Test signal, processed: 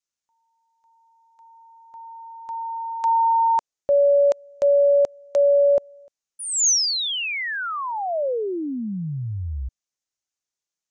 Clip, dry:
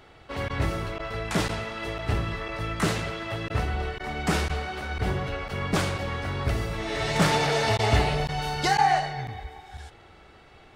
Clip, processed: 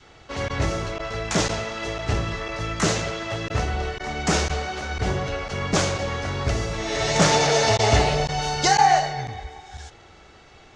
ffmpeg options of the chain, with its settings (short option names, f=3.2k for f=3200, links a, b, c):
-af "adynamicequalizer=threshold=0.0178:dfrequency=570:dqfactor=1.5:tfrequency=570:tqfactor=1.5:attack=5:release=100:ratio=0.375:range=2.5:mode=boostabove:tftype=bell,lowpass=f=6.5k:t=q:w=3.5,volume=2dB"